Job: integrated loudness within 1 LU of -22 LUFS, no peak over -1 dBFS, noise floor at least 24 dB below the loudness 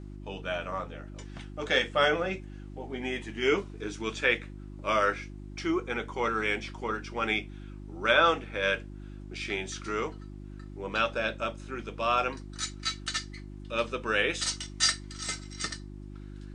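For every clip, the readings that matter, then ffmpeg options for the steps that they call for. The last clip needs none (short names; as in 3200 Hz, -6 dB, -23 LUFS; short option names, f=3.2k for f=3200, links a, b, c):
hum 50 Hz; harmonics up to 350 Hz; hum level -40 dBFS; loudness -30.0 LUFS; peak -8.0 dBFS; loudness target -22.0 LUFS
-> -af "bandreject=f=50:t=h:w=4,bandreject=f=100:t=h:w=4,bandreject=f=150:t=h:w=4,bandreject=f=200:t=h:w=4,bandreject=f=250:t=h:w=4,bandreject=f=300:t=h:w=4,bandreject=f=350:t=h:w=4"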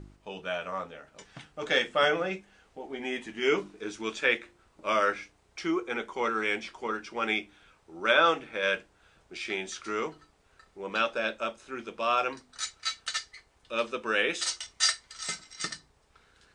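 hum none; loudness -30.0 LUFS; peak -8.0 dBFS; loudness target -22.0 LUFS
-> -af "volume=8dB,alimiter=limit=-1dB:level=0:latency=1"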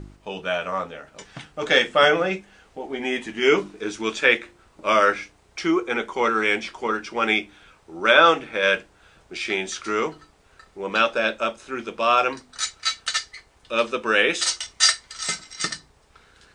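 loudness -22.0 LUFS; peak -1.0 dBFS; noise floor -57 dBFS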